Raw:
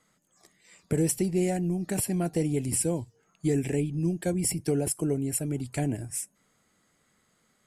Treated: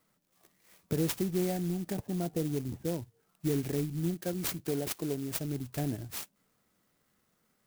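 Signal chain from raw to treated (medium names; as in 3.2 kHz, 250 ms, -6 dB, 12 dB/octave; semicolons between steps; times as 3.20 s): 1.95–3.02 s: Chebyshev low-pass 1 kHz, order 2; 4.14–5.31 s: bass shelf 170 Hz -7 dB; sampling jitter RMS 0.086 ms; trim -4.5 dB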